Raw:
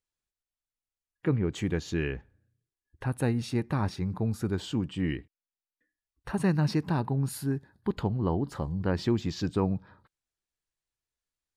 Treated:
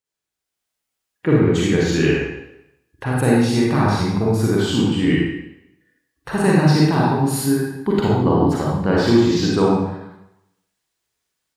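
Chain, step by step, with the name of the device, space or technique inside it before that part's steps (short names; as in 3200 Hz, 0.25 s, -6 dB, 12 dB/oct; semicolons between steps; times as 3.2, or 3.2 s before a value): far laptop microphone (reverb RT60 0.85 s, pre-delay 38 ms, DRR -5 dB; HPF 160 Hz 6 dB/oct; AGC gain up to 9.5 dB)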